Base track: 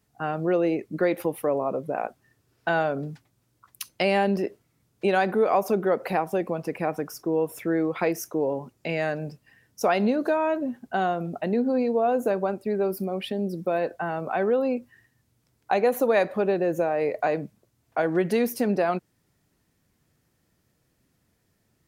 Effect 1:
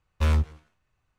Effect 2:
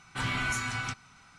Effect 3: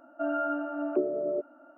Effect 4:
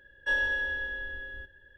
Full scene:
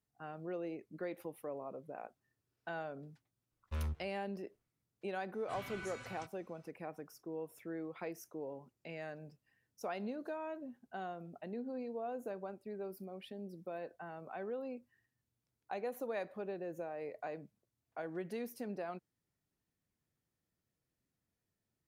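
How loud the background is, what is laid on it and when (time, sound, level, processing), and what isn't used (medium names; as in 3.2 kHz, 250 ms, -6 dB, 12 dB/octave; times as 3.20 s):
base track -18.5 dB
3.51 s: add 1 -16 dB + treble shelf 4 kHz -7 dB
5.33 s: add 2 -17.5 dB + high-pass 40 Hz
not used: 3, 4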